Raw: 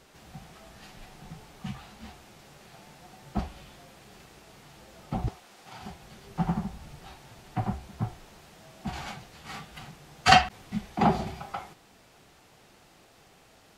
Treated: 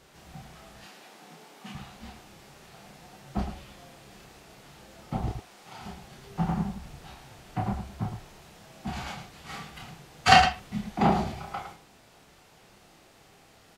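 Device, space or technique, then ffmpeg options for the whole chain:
slapback doubling: -filter_complex "[0:a]asplit=3[link_01][link_02][link_03];[link_02]adelay=30,volume=-4dB[link_04];[link_03]adelay=110,volume=-8dB[link_05];[link_01][link_04][link_05]amix=inputs=3:normalize=0,asettb=1/sr,asplit=3[link_06][link_07][link_08];[link_06]atrim=end=0.864[link_09];[link_07]atrim=start=0.86:end=1.75,asetpts=PTS-STARTPTS,afade=type=in:duration=0.004:curve=qsin,afade=type=out:start_time=0.886:duration=0.004:curve=qsin,highpass=frequency=230:width=0.5412,highpass=frequency=230:width=1.3066[link_10];[link_08]atrim=start=1.746[link_11];[link_09][link_10]acrossfade=duration=0.004:curve1=hsin:curve2=qsin[link_12];[link_12][link_11]acrossfade=duration=0.004:curve1=qsin:curve2=hsin,volume=-1dB"

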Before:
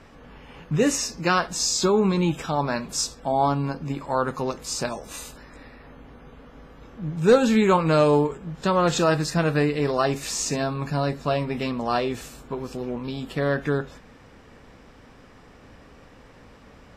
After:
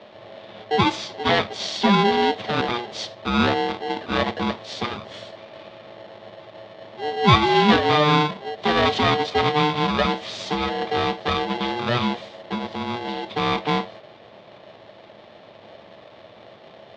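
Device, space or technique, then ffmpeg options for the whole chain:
ring modulator pedal into a guitar cabinet: -af "aeval=exprs='val(0)*sgn(sin(2*PI*600*n/s))':channel_layout=same,highpass=100,equalizer=frequency=110:width_type=q:width=4:gain=6,equalizer=frequency=210:width_type=q:width=4:gain=8,equalizer=frequency=440:width_type=q:width=4:gain=3,equalizer=frequency=620:width_type=q:width=4:gain=9,equalizer=frequency=1500:width_type=q:width=4:gain=-3,equalizer=frequency=3600:width_type=q:width=4:gain=7,lowpass=frequency=4300:width=0.5412,lowpass=frequency=4300:width=1.3066"

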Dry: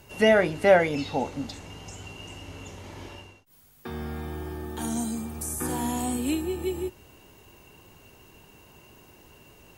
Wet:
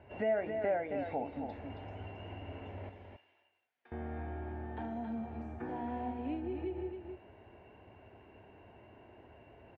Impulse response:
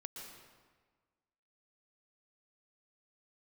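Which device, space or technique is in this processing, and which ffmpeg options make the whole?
bass amplifier: -filter_complex "[0:a]acompressor=threshold=-34dB:ratio=3,highpass=61,equalizer=frequency=86:width_type=q:width=4:gain=3,equalizer=frequency=160:width_type=q:width=4:gain=-9,equalizer=frequency=670:width_type=q:width=4:gain=8,equalizer=frequency=1200:width_type=q:width=4:gain=-8,lowpass=frequency=2200:width=0.5412,lowpass=frequency=2200:width=1.3066,asettb=1/sr,asplit=3[link_01][link_02][link_03];[link_01]atrim=end=2.894[link_04];[link_02]atrim=start=2.89:end=3.92,asetpts=PTS-STARTPTS,afade=type=in:duration=0.004:curve=qsin,afade=type=out:start_time=1.026:duration=0.004:curve=qsin,aderivative[link_05];[link_03]atrim=start=3.916[link_06];[link_04][link_05]acrossfade=duration=0.004:curve1=hsin:curve2=qsin[link_07];[link_07][link_06]acrossfade=duration=0.004:curve1=qsin:curve2=hsin,aecho=1:1:271:0.473,volume=-3.5dB"

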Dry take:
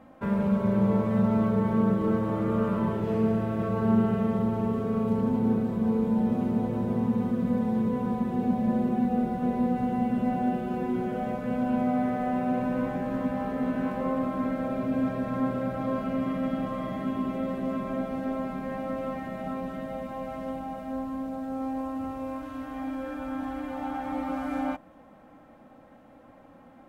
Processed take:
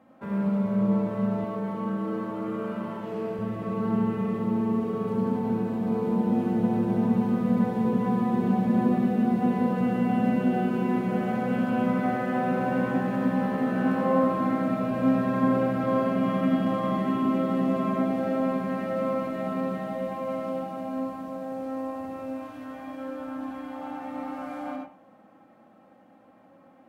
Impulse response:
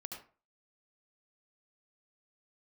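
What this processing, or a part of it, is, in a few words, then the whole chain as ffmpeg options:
far laptop microphone: -filter_complex "[1:a]atrim=start_sample=2205[link_01];[0:a][link_01]afir=irnorm=-1:irlink=0,highpass=130,dynaudnorm=framelen=380:gausssize=31:maxgain=8dB,asettb=1/sr,asplit=3[link_02][link_03][link_04];[link_02]atrim=end=1.444[link_05];[link_03]atrim=start=1.44:end=3.39,asetpts=PTS-STARTPTS,afade=type=in:duration=0.004:curve=qsin,afade=type=out:start_time=1.946:duration=0.004:curve=qsin,highpass=frequency=270:poles=1[link_06];[link_04]atrim=start=3.386[link_07];[link_05][link_06]acrossfade=duration=0.004:curve1=hsin:curve2=qsin[link_08];[link_08][link_07]acrossfade=duration=0.004:curve1=qsin:curve2=hsin"

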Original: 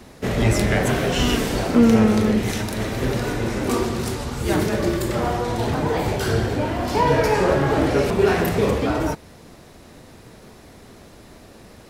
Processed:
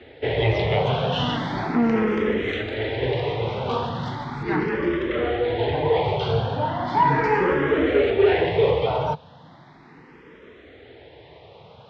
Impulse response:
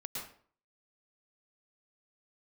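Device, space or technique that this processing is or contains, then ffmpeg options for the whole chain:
barber-pole phaser into a guitar amplifier: -filter_complex "[0:a]asplit=2[link_01][link_02];[link_02]afreqshift=0.37[link_03];[link_01][link_03]amix=inputs=2:normalize=1,asoftclip=type=tanh:threshold=-11dB,highpass=82,equalizer=frequency=150:width_type=q:width=4:gain=4,equalizer=frequency=210:width_type=q:width=4:gain=-7,equalizer=frequency=460:width_type=q:width=4:gain=6,equalizer=frequency=880:width_type=q:width=4:gain=6,equalizer=frequency=2000:width_type=q:width=4:gain=5,equalizer=frequency=3300:width_type=q:width=4:gain=7,lowpass=frequency=3700:width=0.5412,lowpass=frequency=3700:width=1.3066,asettb=1/sr,asplit=3[link_04][link_05][link_06];[link_04]atrim=end=4.434[link_07];[link_05]atrim=start=4.43:end=6.04,asetpts=PTS-STARTPTS,afade=type=in:duration=0.004:curve=qsin,afade=type=out:start_time=1.606:duration=0.004:curve=qsin,lowpass=frequency=5200:width=0.5412,lowpass=frequency=5200:width=1.3066[link_08];[link_06]atrim=start=6.036[link_09];[link_07][link_08]acrossfade=duration=0.004:curve1=hsin:curve2=qsin[link_10];[link_10][link_09]acrossfade=duration=0.004:curve1=qsin:curve2=hsin"

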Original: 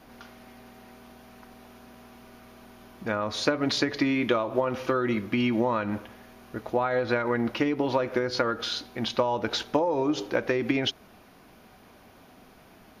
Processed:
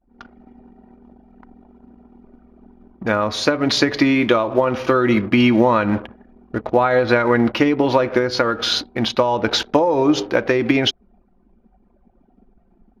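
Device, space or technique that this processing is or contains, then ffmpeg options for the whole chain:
voice memo with heavy noise removal: -af "anlmdn=0.158,dynaudnorm=framelen=130:gausssize=3:maxgain=12.5dB"

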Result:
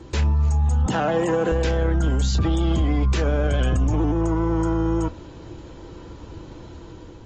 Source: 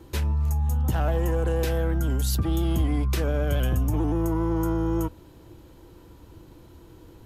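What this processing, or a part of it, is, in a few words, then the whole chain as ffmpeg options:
low-bitrate web radio: -filter_complex "[0:a]asettb=1/sr,asplit=3[link_01][link_02][link_03];[link_01]atrim=end=0.864[link_04];[link_02]atrim=start=0.86:end=1.52,asetpts=PTS-STARTPTS,afade=type=in:duration=0.004:curve=qsin,afade=type=out:start_time=0.656:duration=0.004:curve=qsin,highpass=frequency=160:width=0.5412,highpass=frequency=160:width=1.3066[link_05];[link_03]atrim=start=1.516[link_06];[link_04][link_05]acrossfade=duration=0.004:curve1=hsin:curve2=qsin[link_07];[link_07][link_06]acrossfade=duration=0.004:curve1=qsin:curve2=hsin,dynaudnorm=framelen=230:gausssize=5:maxgain=3dB,alimiter=limit=-20dB:level=0:latency=1:release=12,volume=6dB" -ar 32000 -c:a aac -b:a 24k

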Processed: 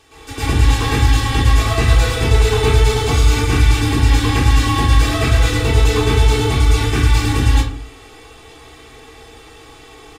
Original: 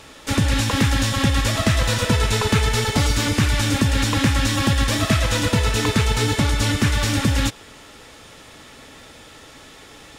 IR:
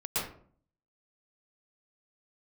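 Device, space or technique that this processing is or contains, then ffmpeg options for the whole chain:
microphone above a desk: -filter_complex "[0:a]aecho=1:1:2.6:0.9[link_01];[1:a]atrim=start_sample=2205[link_02];[link_01][link_02]afir=irnorm=-1:irlink=0,volume=-6.5dB"

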